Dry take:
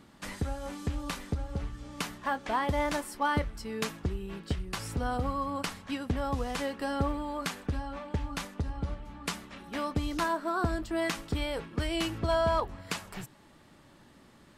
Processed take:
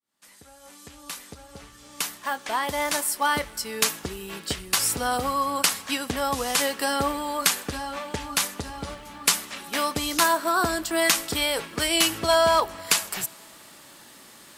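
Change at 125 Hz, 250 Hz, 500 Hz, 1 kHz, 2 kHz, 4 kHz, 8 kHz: -5.5, +1.5, +6.0, +7.5, +9.5, +14.0, +19.0 dB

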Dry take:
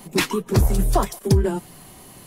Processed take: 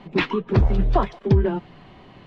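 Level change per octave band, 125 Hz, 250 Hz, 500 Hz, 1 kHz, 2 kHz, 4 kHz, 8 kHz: 0.0 dB, 0.0 dB, 0.0 dB, 0.0 dB, 0.0 dB, -5.0 dB, under -25 dB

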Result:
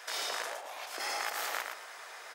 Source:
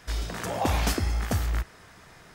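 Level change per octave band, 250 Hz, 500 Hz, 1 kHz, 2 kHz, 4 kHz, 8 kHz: -25.5, -9.0, -5.0, -0.5, -1.0, -3.0 dB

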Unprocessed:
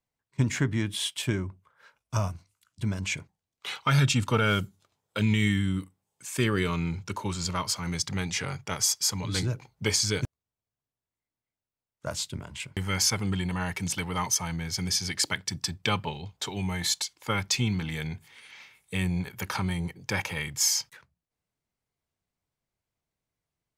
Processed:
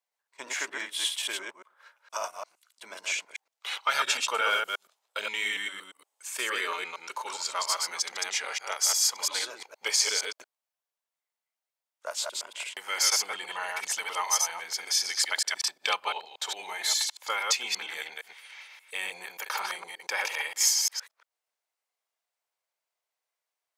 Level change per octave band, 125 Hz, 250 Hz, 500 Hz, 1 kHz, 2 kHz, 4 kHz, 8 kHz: under -40 dB, -25.0 dB, -5.0 dB, +2.0 dB, +2.0 dB, +2.0 dB, +2.0 dB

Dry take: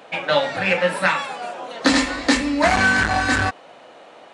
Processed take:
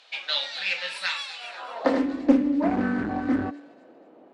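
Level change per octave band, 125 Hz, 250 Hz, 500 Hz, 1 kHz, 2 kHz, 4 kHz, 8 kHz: -10.0 dB, -0.5 dB, -7.5 dB, -11.5 dB, -13.5 dB, -4.5 dB, under -15 dB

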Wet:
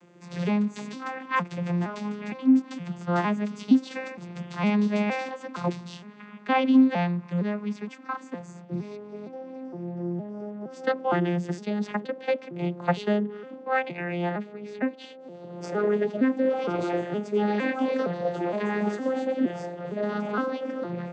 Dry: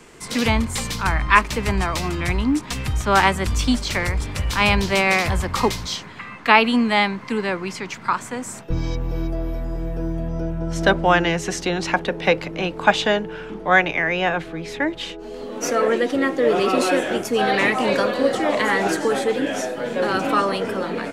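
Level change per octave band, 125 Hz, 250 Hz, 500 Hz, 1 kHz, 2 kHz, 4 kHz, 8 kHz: -6.0 dB, -1.5 dB, -7.0 dB, -10.5 dB, -13.5 dB, -17.0 dB, under -20 dB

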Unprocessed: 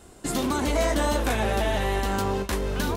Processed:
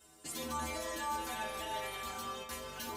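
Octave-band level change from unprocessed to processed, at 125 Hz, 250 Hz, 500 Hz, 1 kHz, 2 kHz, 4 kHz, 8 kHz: -23.0, -19.5, -17.5, -10.0, -12.0, -10.0, -9.0 dB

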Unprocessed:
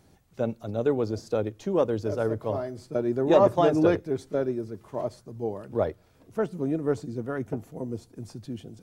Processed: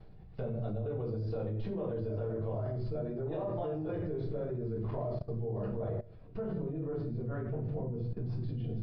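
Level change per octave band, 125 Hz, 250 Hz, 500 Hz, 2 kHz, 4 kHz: 0.0 dB, -10.0 dB, -11.0 dB, -15.5 dB, under -15 dB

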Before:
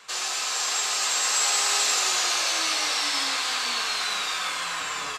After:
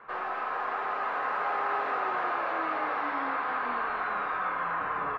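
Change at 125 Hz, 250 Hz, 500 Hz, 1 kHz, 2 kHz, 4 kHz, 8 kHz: n/a, +3.0 dB, +3.0 dB, +2.5 dB, -4.5 dB, -27.5 dB, under -40 dB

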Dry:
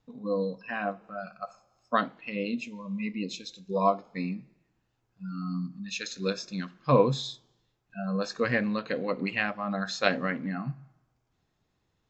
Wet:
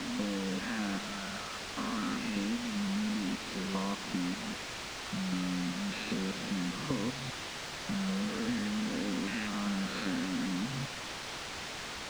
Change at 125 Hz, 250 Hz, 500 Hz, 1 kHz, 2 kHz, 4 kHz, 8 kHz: -4.0 dB, -0.5 dB, -12.0 dB, -7.5 dB, -4.0 dB, +2.0 dB, n/a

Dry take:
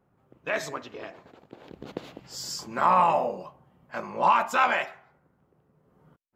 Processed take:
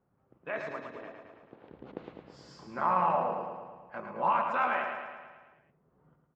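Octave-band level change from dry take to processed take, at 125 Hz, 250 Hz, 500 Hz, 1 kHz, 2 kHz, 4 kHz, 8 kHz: -4.0 dB, -4.5 dB, -5.0 dB, -5.5 dB, -6.5 dB, under -10 dB, under -25 dB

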